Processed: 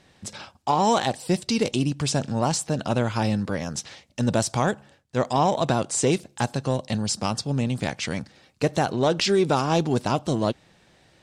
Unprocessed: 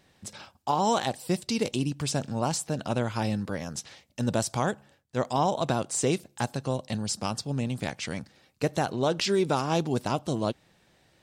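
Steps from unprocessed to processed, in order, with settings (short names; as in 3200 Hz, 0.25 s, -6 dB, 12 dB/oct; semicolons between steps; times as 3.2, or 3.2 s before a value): in parallel at -7 dB: soft clip -25.5 dBFS, distortion -10 dB; on the sum: LPF 9600 Hz 12 dB/oct; gain +2.5 dB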